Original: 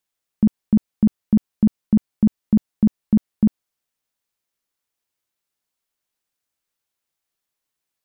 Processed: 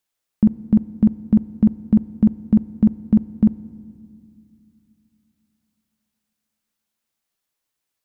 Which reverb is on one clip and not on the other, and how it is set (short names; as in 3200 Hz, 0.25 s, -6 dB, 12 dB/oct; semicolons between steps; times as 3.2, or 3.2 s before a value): FDN reverb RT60 2.2 s, low-frequency decay 1.5×, high-frequency decay 0.75×, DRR 16.5 dB; gain +1.5 dB